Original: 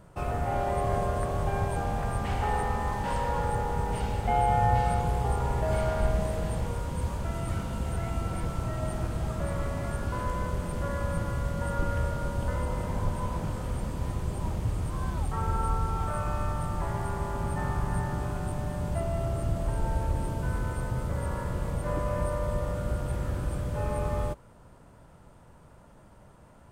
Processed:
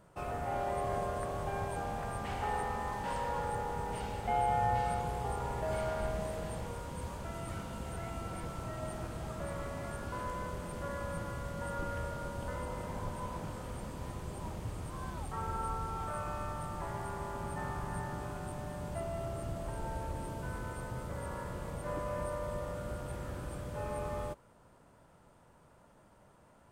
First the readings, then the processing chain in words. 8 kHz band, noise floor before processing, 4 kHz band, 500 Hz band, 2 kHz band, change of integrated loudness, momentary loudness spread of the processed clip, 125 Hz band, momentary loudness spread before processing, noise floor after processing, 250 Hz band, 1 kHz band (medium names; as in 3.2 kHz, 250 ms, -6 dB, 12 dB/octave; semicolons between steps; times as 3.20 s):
-5.0 dB, -53 dBFS, -5.0 dB, -5.5 dB, -5.0 dB, -7.5 dB, 7 LU, -11.0 dB, 5 LU, -62 dBFS, -8.0 dB, -5.5 dB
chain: bass shelf 150 Hz -9 dB; trim -5 dB